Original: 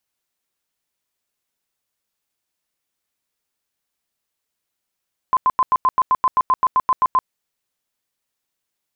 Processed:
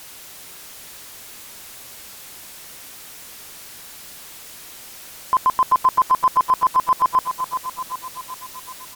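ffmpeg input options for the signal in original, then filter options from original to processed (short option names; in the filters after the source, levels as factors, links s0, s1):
-f lavfi -i "aevalsrc='0.266*sin(2*PI*1030*mod(t,0.13))*lt(mod(t,0.13),40/1030)':d=1.95:s=44100"
-af "aeval=exprs='val(0)+0.5*0.02*sgn(val(0))':c=same,aecho=1:1:384|768|1152|1536|1920|2304|2688:0.376|0.222|0.131|0.0772|0.0455|0.0269|0.0159" -ar 44100 -c:a sbc -b:a 128k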